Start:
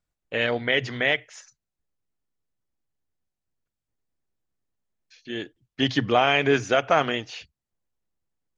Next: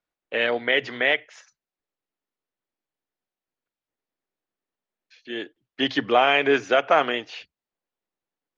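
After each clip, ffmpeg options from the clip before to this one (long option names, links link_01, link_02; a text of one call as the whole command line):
ffmpeg -i in.wav -filter_complex "[0:a]acrossover=split=240 4500:gain=0.126 1 0.224[link_01][link_02][link_03];[link_01][link_02][link_03]amix=inputs=3:normalize=0,volume=2dB" out.wav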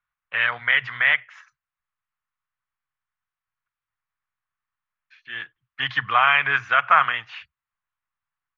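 ffmpeg -i in.wav -af "firequalizer=gain_entry='entry(130,0);entry(250,-24);entry(380,-27);entry(1100,5);entry(4700,-14);entry(8500,-17)':delay=0.05:min_phase=1,volume=4dB" out.wav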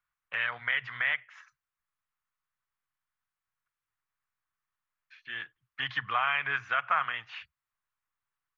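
ffmpeg -i in.wav -af "acompressor=threshold=-38dB:ratio=1.5,volume=-2dB" out.wav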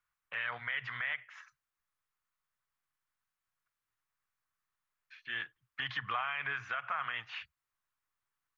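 ffmpeg -i in.wav -af "alimiter=level_in=1dB:limit=-24dB:level=0:latency=1:release=55,volume=-1dB" out.wav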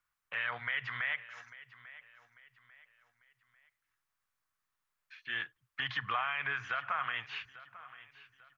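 ffmpeg -i in.wav -af "aecho=1:1:845|1690|2535:0.133|0.0493|0.0183,volume=1.5dB" out.wav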